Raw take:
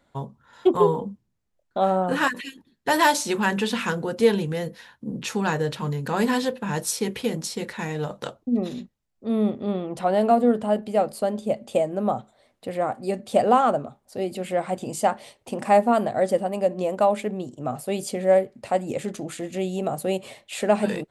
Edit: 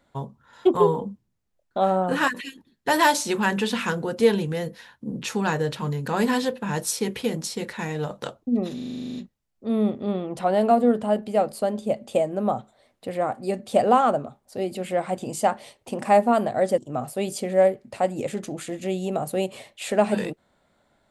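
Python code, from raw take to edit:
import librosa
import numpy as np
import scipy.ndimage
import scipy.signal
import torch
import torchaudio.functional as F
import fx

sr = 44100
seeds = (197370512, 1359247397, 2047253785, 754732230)

y = fx.edit(x, sr, fx.stutter(start_s=8.75, slice_s=0.04, count=11),
    fx.cut(start_s=16.38, length_s=1.11), tone=tone)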